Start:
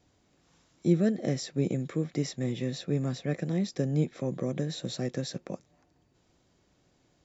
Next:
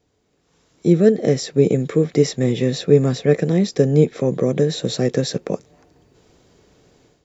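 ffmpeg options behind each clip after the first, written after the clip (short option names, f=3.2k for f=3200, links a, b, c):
-af "dynaudnorm=f=470:g=3:m=13.5dB,equalizer=f=440:t=o:w=0.26:g=10.5,volume=-1dB"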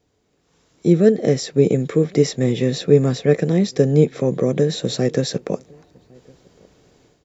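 -filter_complex "[0:a]asplit=2[a][b];[b]adelay=1108,volume=-28dB,highshelf=f=4k:g=-24.9[c];[a][c]amix=inputs=2:normalize=0"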